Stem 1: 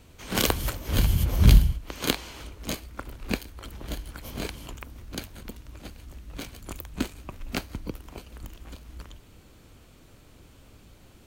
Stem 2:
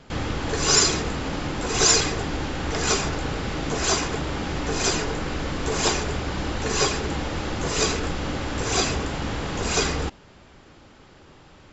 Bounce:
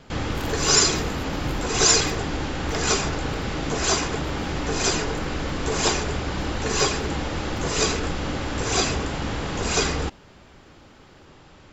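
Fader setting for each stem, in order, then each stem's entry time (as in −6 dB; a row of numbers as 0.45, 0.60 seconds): −18.0, +0.5 decibels; 0.00, 0.00 seconds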